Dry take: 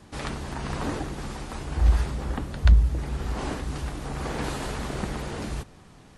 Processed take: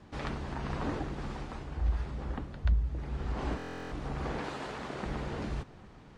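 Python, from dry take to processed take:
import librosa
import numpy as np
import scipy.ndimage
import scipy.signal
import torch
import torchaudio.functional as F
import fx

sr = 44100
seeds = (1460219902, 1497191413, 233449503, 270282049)

p1 = scipy.signal.sosfilt(scipy.signal.butter(2, 7300.0, 'lowpass', fs=sr, output='sos'), x)
p2 = fx.high_shelf(p1, sr, hz=4900.0, db=-11.0)
p3 = p2 + fx.echo_single(p2, sr, ms=805, db=-22.0, dry=0)
p4 = fx.rider(p3, sr, range_db=4, speed_s=0.5)
p5 = fx.highpass(p4, sr, hz=310.0, slope=6, at=(4.39, 5.06))
p6 = fx.buffer_glitch(p5, sr, at_s=(3.57,), block=1024, repeats=14)
y = p6 * 10.0 ** (-7.5 / 20.0)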